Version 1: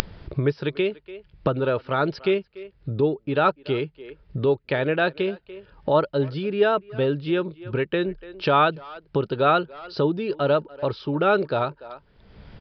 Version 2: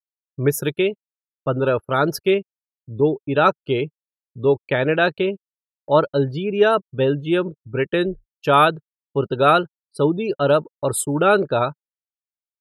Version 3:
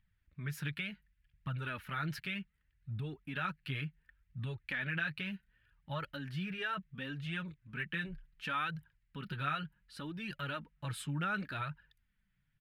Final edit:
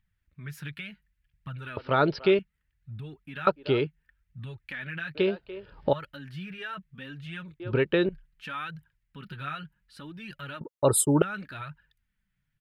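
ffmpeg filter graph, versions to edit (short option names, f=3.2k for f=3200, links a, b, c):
-filter_complex "[0:a]asplit=4[a][b][c][d];[2:a]asplit=6[e][f][g][h][i][j];[e]atrim=end=1.772[k];[a]atrim=start=1.768:end=2.392[l];[f]atrim=start=2.388:end=3.472[m];[b]atrim=start=3.468:end=3.872[n];[g]atrim=start=3.868:end=5.152[o];[c]atrim=start=5.148:end=5.932[p];[h]atrim=start=5.928:end=7.602[q];[d]atrim=start=7.598:end=8.092[r];[i]atrim=start=8.088:end=10.612[s];[1:a]atrim=start=10.608:end=11.222[t];[j]atrim=start=11.218[u];[k][l]acrossfade=d=0.004:c1=hsin:c2=hsin[v];[v][m]acrossfade=d=0.004:c1=hsin:c2=hsin[w];[w][n]acrossfade=d=0.004:c1=hsin:c2=hsin[x];[x][o]acrossfade=d=0.004:c1=hsin:c2=hsin[y];[y][p]acrossfade=d=0.004:c1=hsin:c2=hsin[z];[z][q]acrossfade=d=0.004:c1=hsin:c2=hsin[aa];[aa][r]acrossfade=d=0.004:c1=hsin:c2=hsin[ab];[ab][s]acrossfade=d=0.004:c1=hsin:c2=hsin[ac];[ac][t]acrossfade=d=0.004:c1=hsin:c2=hsin[ad];[ad][u]acrossfade=d=0.004:c1=hsin:c2=hsin"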